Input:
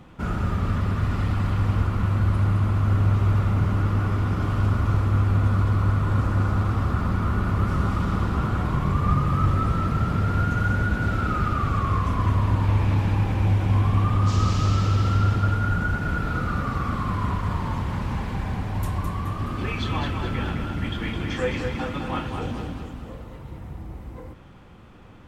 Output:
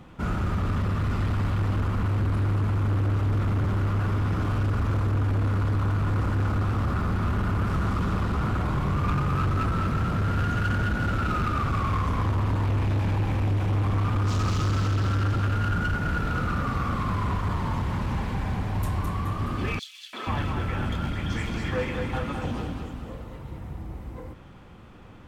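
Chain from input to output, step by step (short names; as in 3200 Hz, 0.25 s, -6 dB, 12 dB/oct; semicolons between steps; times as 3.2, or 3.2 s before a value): hard clip -21.5 dBFS, distortion -10 dB; 19.79–22.45 three bands offset in time highs, mids, lows 0.34/0.48 s, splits 320/3200 Hz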